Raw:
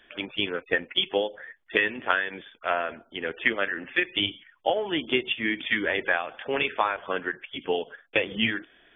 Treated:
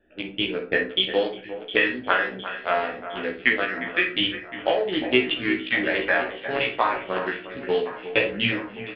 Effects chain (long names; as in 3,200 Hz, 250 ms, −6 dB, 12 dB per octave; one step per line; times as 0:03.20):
adaptive Wiener filter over 41 samples
pitch vibrato 2.5 Hz 22 cents
double-tracking delay 16 ms −2 dB
delay that swaps between a low-pass and a high-pass 355 ms, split 2,300 Hz, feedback 76%, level −12 dB
on a send at −5 dB: convolution reverb RT60 0.35 s, pre-delay 27 ms
on the sum: downsampling to 11,025 Hz
level +1 dB